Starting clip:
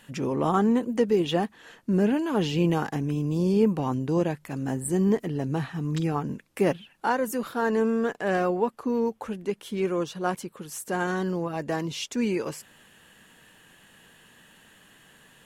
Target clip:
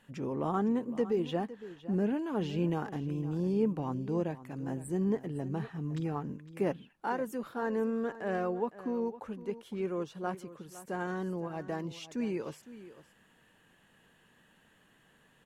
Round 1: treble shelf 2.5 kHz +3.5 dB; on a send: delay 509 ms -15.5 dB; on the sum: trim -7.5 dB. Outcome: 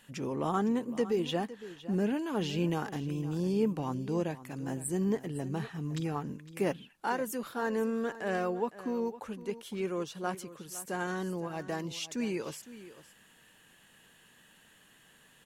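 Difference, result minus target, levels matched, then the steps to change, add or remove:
4 kHz band +7.0 dB
change: treble shelf 2.5 kHz -8.5 dB

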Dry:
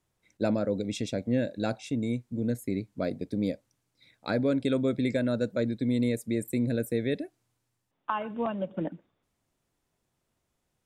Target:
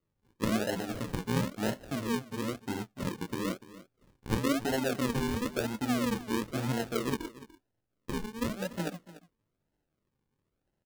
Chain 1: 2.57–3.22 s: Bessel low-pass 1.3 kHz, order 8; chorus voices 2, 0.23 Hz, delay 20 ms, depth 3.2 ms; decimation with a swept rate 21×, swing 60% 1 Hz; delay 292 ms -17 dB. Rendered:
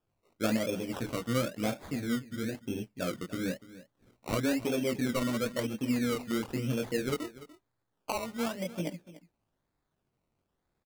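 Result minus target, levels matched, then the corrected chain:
decimation with a swept rate: distortion -12 dB
2.57–3.22 s: Bessel low-pass 1.3 kHz, order 8; chorus voices 2, 0.23 Hz, delay 20 ms, depth 3.2 ms; decimation with a swept rate 53×, swing 60% 1 Hz; delay 292 ms -17 dB

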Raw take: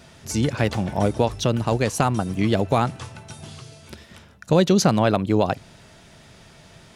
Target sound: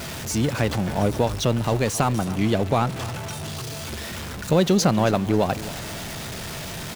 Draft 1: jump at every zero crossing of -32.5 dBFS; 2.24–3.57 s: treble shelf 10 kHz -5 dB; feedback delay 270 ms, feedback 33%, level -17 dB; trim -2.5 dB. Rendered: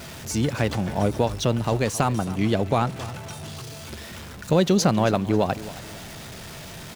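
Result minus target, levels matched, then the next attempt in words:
jump at every zero crossing: distortion -6 dB
jump at every zero crossing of -25.5 dBFS; 2.24–3.57 s: treble shelf 10 kHz -5 dB; feedback delay 270 ms, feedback 33%, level -17 dB; trim -2.5 dB

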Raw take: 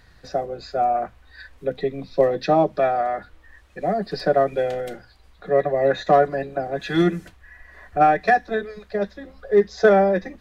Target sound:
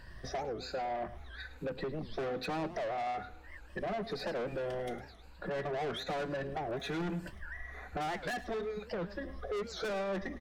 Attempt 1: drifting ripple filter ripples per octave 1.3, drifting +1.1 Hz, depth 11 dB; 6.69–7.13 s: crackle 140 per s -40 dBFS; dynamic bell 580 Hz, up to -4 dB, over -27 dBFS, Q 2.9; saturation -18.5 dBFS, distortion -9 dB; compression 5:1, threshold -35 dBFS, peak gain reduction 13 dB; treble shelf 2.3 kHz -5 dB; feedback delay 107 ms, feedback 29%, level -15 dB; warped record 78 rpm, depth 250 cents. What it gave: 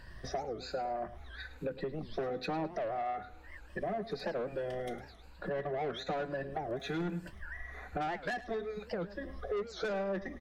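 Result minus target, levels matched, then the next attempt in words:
saturation: distortion -5 dB
drifting ripple filter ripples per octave 1.3, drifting +1.1 Hz, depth 11 dB; 6.69–7.13 s: crackle 140 per s -40 dBFS; dynamic bell 580 Hz, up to -4 dB, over -27 dBFS, Q 2.9; saturation -27 dBFS, distortion -4 dB; compression 5:1, threshold -35 dBFS, peak gain reduction 6.5 dB; treble shelf 2.3 kHz -5 dB; feedback delay 107 ms, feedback 29%, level -15 dB; warped record 78 rpm, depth 250 cents

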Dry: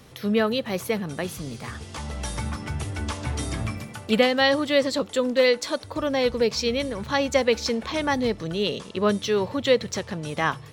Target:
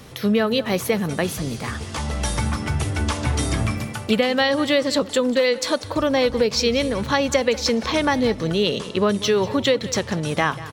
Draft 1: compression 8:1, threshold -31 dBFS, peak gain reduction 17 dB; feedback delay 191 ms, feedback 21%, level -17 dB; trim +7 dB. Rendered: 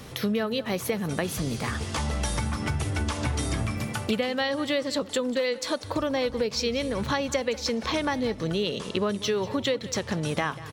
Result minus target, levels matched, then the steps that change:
compression: peak gain reduction +8 dB
change: compression 8:1, threshold -22 dBFS, peak gain reduction 9 dB

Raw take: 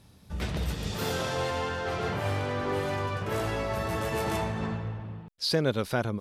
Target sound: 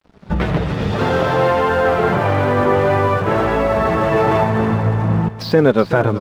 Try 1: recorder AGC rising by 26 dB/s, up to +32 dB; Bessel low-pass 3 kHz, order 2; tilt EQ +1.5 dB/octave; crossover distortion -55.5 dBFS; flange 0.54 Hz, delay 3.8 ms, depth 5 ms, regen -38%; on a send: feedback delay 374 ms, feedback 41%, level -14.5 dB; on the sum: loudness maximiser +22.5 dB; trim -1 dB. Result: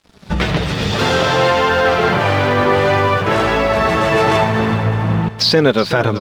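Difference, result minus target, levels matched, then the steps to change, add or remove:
4 kHz band +10.5 dB
change: Bessel low-pass 1.2 kHz, order 2

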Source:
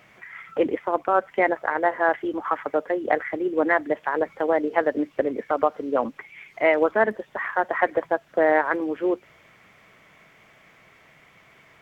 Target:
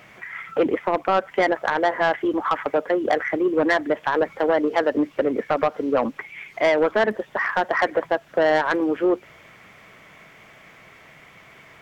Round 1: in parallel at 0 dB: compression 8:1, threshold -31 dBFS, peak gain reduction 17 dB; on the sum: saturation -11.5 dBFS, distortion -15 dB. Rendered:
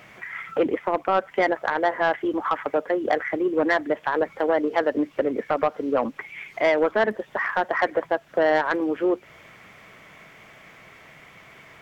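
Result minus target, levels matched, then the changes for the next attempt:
compression: peak gain reduction +10 dB
change: compression 8:1, threshold -19.5 dBFS, peak gain reduction 7 dB

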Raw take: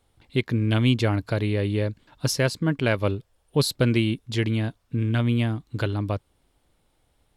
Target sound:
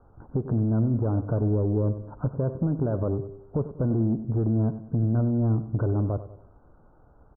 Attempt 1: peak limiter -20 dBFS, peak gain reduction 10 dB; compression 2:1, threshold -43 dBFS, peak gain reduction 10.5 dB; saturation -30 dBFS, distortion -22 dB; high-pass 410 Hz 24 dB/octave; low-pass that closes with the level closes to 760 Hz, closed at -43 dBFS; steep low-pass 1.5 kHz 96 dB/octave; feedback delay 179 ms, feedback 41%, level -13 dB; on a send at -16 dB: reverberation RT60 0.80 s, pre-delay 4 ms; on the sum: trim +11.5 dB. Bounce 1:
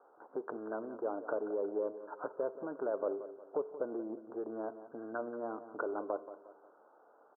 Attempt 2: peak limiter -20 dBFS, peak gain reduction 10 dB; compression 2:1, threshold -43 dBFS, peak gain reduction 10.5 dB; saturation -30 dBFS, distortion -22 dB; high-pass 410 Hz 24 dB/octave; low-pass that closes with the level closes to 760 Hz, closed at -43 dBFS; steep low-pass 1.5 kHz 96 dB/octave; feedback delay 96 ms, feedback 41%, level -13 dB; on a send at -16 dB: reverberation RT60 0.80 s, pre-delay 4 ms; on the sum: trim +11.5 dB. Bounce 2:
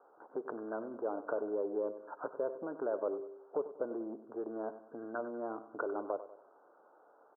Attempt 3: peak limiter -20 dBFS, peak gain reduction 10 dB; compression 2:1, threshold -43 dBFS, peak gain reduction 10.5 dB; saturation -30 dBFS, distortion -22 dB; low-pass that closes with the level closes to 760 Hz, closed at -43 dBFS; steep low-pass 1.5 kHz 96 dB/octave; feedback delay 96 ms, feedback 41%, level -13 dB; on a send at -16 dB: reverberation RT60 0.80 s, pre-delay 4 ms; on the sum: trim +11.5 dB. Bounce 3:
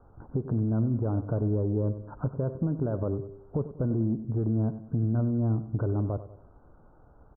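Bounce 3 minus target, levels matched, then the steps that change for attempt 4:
compression: peak gain reduction +4.5 dB
change: compression 2:1, threshold -34 dBFS, peak gain reduction 6 dB

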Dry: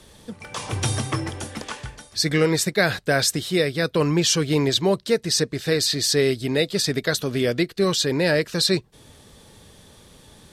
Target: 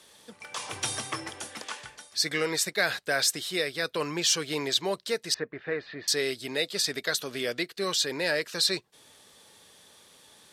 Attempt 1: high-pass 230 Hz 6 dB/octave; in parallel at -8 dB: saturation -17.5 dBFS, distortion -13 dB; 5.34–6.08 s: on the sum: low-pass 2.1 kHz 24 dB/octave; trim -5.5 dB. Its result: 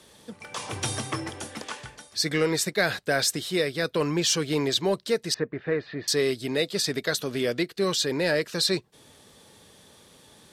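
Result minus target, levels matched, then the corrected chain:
250 Hz band +5.5 dB
high-pass 870 Hz 6 dB/octave; in parallel at -8 dB: saturation -17.5 dBFS, distortion -14 dB; 5.34–6.08 s: on the sum: low-pass 2.1 kHz 24 dB/octave; trim -5.5 dB

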